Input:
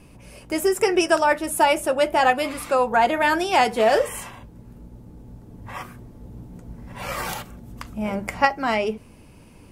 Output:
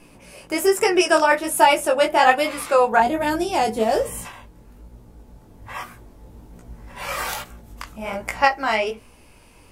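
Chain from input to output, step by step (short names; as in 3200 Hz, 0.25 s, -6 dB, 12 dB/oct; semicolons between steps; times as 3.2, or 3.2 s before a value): bell 72 Hz -11.5 dB 2.7 oct, from 3 s 1800 Hz, from 4.25 s 160 Hz; chorus 1.2 Hz, delay 16.5 ms, depth 6.6 ms; gain +6.5 dB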